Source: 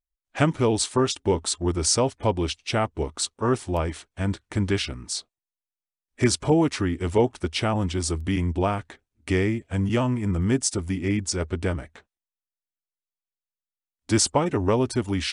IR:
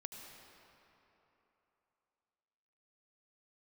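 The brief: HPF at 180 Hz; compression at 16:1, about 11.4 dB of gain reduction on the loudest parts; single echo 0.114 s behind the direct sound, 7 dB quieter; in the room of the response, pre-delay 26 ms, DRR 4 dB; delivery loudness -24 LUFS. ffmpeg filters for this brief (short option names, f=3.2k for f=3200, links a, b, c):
-filter_complex "[0:a]highpass=180,acompressor=threshold=-27dB:ratio=16,aecho=1:1:114:0.447,asplit=2[a][b];[1:a]atrim=start_sample=2205,adelay=26[c];[b][c]afir=irnorm=-1:irlink=0,volume=-0.5dB[d];[a][d]amix=inputs=2:normalize=0,volume=7dB"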